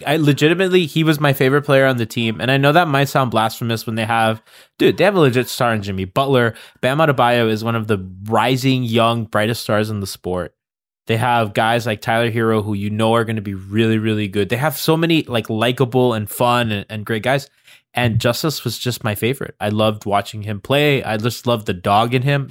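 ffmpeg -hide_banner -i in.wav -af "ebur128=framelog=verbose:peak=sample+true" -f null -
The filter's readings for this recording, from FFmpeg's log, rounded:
Integrated loudness:
  I:         -17.3 LUFS
  Threshold: -27.4 LUFS
Loudness range:
  LRA:         3.5 LU
  Threshold: -37.7 LUFS
  LRA low:   -19.3 LUFS
  LRA high:  -15.9 LUFS
Sample peak:
  Peak:       -1.8 dBFS
True peak:
  Peak:       -1.8 dBFS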